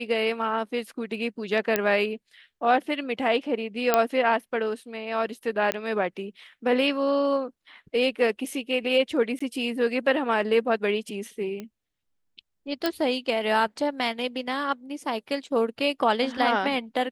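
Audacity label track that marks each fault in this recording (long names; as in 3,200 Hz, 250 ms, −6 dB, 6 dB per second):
1.760000	1.760000	click −7 dBFS
3.940000	3.940000	click −5 dBFS
5.720000	5.720000	click −10 dBFS
9.390000	9.400000	drop-out 15 ms
11.600000	11.600000	click −22 dBFS
12.860000	12.860000	click −11 dBFS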